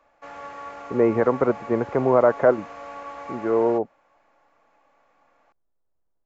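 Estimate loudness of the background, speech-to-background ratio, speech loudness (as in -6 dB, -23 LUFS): -38.0 LUFS, 16.5 dB, -21.5 LUFS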